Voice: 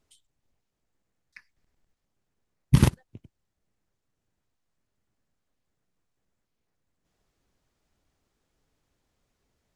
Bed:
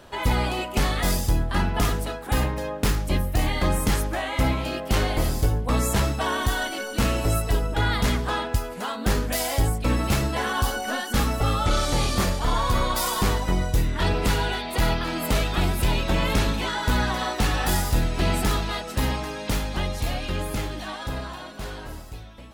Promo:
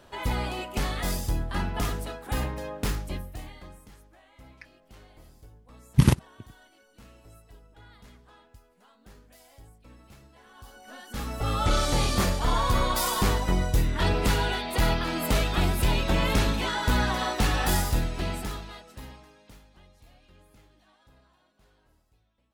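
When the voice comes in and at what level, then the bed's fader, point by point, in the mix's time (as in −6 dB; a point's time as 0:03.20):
3.25 s, 0.0 dB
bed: 0:02.95 −6 dB
0:03.89 −29.5 dB
0:10.43 −29.5 dB
0:11.64 −1.5 dB
0:17.81 −1.5 dB
0:19.74 −29 dB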